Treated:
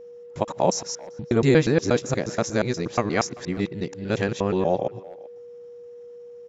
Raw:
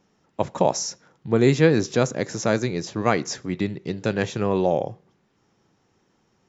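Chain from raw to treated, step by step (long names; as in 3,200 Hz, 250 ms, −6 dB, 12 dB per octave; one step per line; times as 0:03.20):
reversed piece by piece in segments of 119 ms
steady tone 480 Hz −39 dBFS
far-end echo of a speakerphone 390 ms, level −20 dB
level −1 dB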